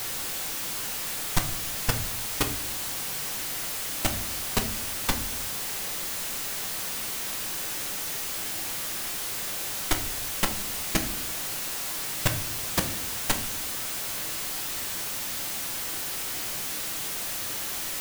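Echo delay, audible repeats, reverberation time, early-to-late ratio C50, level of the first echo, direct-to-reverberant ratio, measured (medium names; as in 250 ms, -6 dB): no echo, no echo, 0.55 s, 12.0 dB, no echo, 5.0 dB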